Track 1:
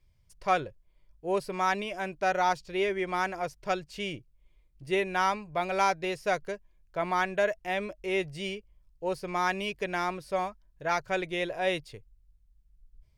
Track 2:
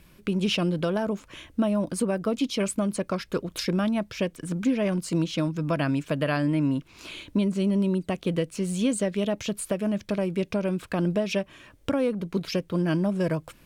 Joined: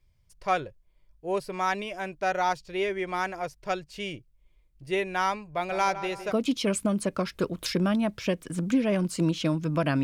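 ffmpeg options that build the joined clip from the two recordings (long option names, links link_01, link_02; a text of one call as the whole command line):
ffmpeg -i cue0.wav -i cue1.wav -filter_complex "[0:a]asplit=3[link_01][link_02][link_03];[link_01]afade=type=out:start_time=5.68:duration=0.02[link_04];[link_02]asplit=2[link_05][link_06];[link_06]adelay=160,lowpass=frequency=2100:poles=1,volume=-11dB,asplit=2[link_07][link_08];[link_08]adelay=160,lowpass=frequency=2100:poles=1,volume=0.46,asplit=2[link_09][link_10];[link_10]adelay=160,lowpass=frequency=2100:poles=1,volume=0.46,asplit=2[link_11][link_12];[link_12]adelay=160,lowpass=frequency=2100:poles=1,volume=0.46,asplit=2[link_13][link_14];[link_14]adelay=160,lowpass=frequency=2100:poles=1,volume=0.46[link_15];[link_05][link_07][link_09][link_11][link_13][link_15]amix=inputs=6:normalize=0,afade=type=in:start_time=5.68:duration=0.02,afade=type=out:start_time=6.33:duration=0.02[link_16];[link_03]afade=type=in:start_time=6.33:duration=0.02[link_17];[link_04][link_16][link_17]amix=inputs=3:normalize=0,apad=whole_dur=10.03,atrim=end=10.03,atrim=end=6.33,asetpts=PTS-STARTPTS[link_18];[1:a]atrim=start=2.2:end=5.96,asetpts=PTS-STARTPTS[link_19];[link_18][link_19]acrossfade=duration=0.06:curve1=tri:curve2=tri" out.wav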